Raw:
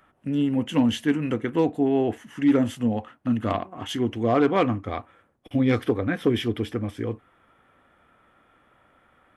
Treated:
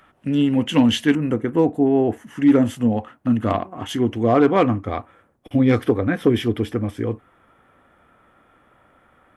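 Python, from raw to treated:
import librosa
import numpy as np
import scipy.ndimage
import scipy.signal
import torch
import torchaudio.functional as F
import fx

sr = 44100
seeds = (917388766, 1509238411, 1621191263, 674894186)

y = fx.peak_eq(x, sr, hz=3500.0, db=fx.steps((0.0, 3.5), (1.15, -11.0), (2.27, -4.0)), octaves=2.0)
y = F.gain(torch.from_numpy(y), 5.0).numpy()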